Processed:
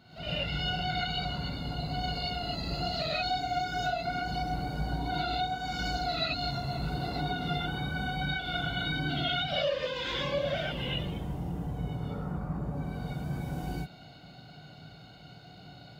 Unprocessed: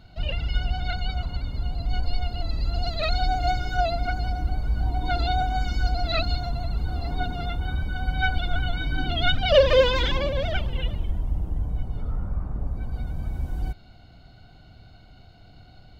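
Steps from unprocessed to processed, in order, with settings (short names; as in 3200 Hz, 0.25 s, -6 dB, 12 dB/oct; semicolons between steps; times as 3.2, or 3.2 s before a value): HPF 150 Hz 12 dB/oct; compressor 10:1, threshold -32 dBFS, peak gain reduction 20.5 dB; non-linear reverb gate 0.15 s rising, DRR -7 dB; gain -4 dB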